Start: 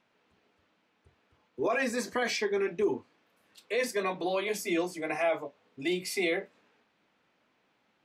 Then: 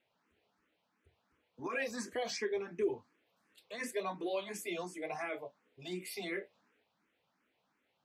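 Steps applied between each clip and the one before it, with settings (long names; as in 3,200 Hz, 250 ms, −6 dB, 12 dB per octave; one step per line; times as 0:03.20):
frequency shifter mixed with the dry sound +2.8 Hz
level −4.5 dB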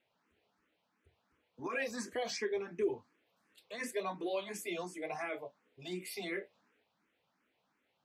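no processing that can be heard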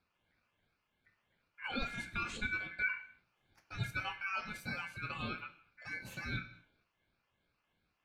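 ring modulation 1,900 Hz
bass and treble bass +10 dB, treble −9 dB
reverb whose tail is shaped and stops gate 280 ms falling, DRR 11.5 dB
level +1 dB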